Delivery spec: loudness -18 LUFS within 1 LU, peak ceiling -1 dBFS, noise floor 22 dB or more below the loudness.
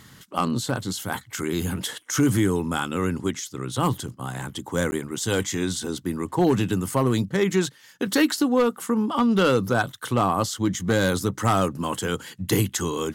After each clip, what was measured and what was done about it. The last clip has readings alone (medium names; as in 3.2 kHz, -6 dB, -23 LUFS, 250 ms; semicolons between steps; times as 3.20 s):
clipped samples 0.3%; clipping level -12.5 dBFS; dropouts 1; longest dropout 10 ms; loudness -24.5 LUFS; peak level -12.5 dBFS; loudness target -18.0 LUFS
-> clip repair -12.5 dBFS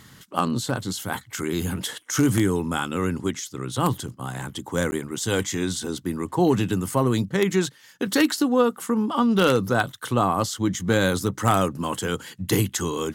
clipped samples 0.0%; dropouts 1; longest dropout 10 ms
-> interpolate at 4.91 s, 10 ms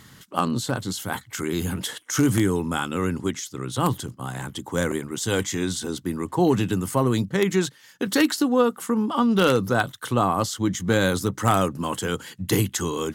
dropouts 0; loudness -24.0 LUFS; peak level -3.5 dBFS; loudness target -18.0 LUFS
-> trim +6 dB; peak limiter -1 dBFS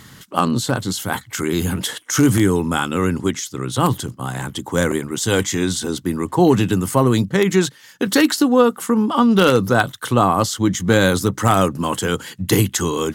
loudness -18.5 LUFS; peak level -1.0 dBFS; noise floor -46 dBFS